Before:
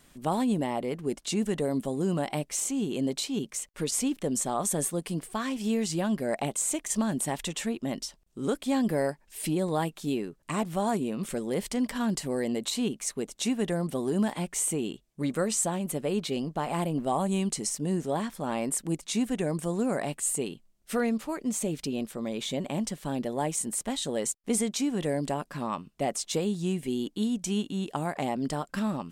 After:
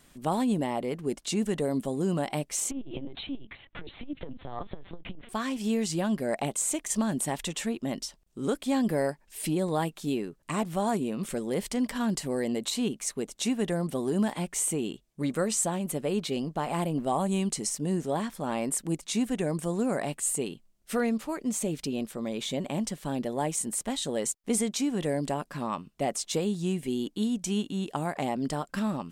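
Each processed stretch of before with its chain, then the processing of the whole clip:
0:02.71–0:05.29: upward compression, threshold −30 dBFS + linear-prediction vocoder at 8 kHz pitch kept + saturating transformer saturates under 130 Hz
whole clip: no processing

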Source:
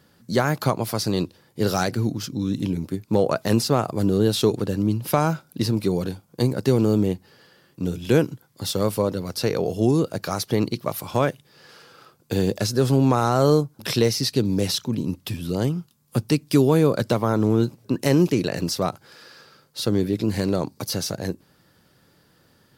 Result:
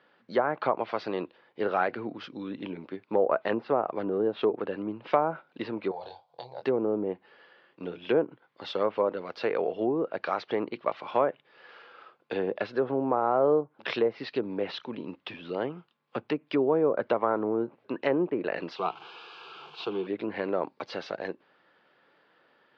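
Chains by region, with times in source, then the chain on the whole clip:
0:05.91–0:06.62: drawn EQ curve 150 Hz 0 dB, 210 Hz −28 dB, 440 Hz −8 dB, 820 Hz +9 dB, 1,300 Hz −15 dB, 2,700 Hz −10 dB, 4,000 Hz +6 dB, 11,000 Hz −9 dB + downward compressor, threshold −31 dBFS + double-tracking delay 24 ms −6 dB
0:18.76–0:20.07: linear delta modulator 64 kbit/s, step −33.5 dBFS + parametric band 2,700 Hz +9.5 dB 0.68 octaves + phaser with its sweep stopped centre 380 Hz, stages 8
whole clip: inverse Chebyshev low-pass filter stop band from 11,000 Hz, stop band 70 dB; treble cut that deepens with the level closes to 850 Hz, closed at −14.5 dBFS; high-pass filter 490 Hz 12 dB per octave

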